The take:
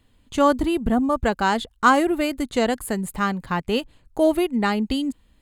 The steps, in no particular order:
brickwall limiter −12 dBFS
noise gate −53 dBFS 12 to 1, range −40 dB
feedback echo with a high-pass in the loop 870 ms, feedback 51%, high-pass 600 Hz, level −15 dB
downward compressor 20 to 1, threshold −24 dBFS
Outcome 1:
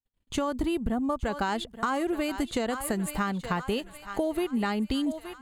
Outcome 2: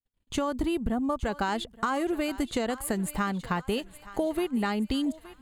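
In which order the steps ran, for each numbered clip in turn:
noise gate, then feedback echo with a high-pass in the loop, then brickwall limiter, then downward compressor
brickwall limiter, then downward compressor, then feedback echo with a high-pass in the loop, then noise gate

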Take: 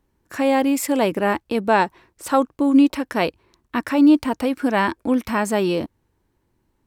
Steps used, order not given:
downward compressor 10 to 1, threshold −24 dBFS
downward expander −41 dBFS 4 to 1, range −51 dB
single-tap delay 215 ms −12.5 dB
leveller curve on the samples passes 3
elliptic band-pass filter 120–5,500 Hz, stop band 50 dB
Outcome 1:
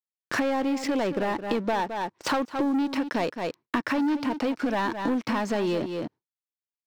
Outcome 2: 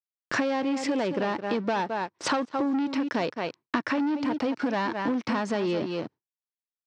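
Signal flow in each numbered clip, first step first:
elliptic band-pass filter, then leveller curve on the samples, then single-tap delay, then downward compressor, then downward expander
single-tap delay, then leveller curve on the samples, then elliptic band-pass filter, then downward compressor, then downward expander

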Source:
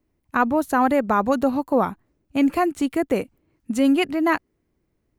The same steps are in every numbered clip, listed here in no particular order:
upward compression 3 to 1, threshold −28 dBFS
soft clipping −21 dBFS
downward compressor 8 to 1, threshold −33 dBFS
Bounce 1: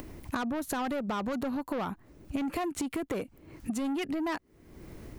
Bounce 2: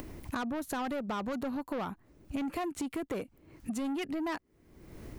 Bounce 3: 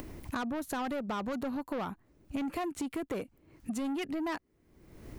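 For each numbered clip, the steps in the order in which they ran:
soft clipping, then downward compressor, then upward compression
soft clipping, then upward compression, then downward compressor
upward compression, then soft clipping, then downward compressor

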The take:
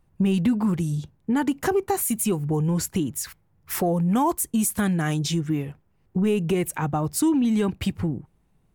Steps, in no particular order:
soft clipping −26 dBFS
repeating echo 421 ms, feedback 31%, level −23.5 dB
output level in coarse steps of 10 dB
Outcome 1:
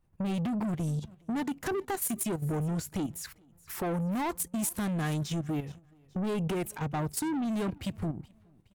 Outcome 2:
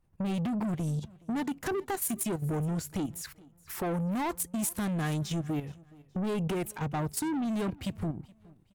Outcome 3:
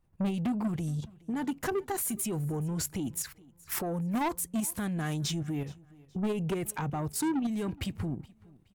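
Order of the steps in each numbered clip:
soft clipping, then repeating echo, then output level in coarse steps
soft clipping, then output level in coarse steps, then repeating echo
output level in coarse steps, then soft clipping, then repeating echo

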